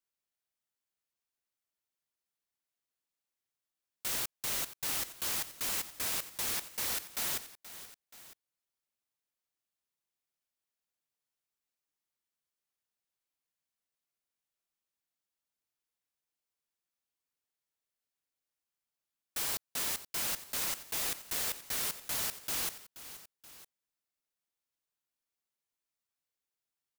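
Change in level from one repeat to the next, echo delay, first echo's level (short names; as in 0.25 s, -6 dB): -5.0 dB, 0.478 s, -14.5 dB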